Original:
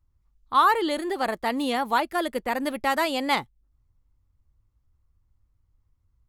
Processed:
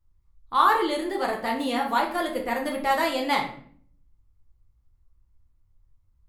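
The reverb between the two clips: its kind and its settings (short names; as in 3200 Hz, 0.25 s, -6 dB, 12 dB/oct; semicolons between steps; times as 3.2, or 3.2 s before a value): shoebox room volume 72 m³, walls mixed, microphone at 0.74 m; gain -3.5 dB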